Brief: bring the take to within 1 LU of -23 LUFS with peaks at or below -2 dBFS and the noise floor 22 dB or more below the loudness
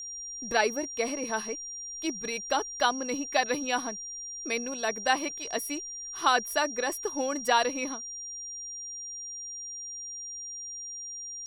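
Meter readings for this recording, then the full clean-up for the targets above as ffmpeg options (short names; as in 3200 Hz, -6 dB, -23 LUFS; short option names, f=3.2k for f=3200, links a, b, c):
steady tone 5700 Hz; tone level -37 dBFS; loudness -30.5 LUFS; peak -10.0 dBFS; loudness target -23.0 LUFS
-> -af "bandreject=f=5.7k:w=30"
-af "volume=7.5dB"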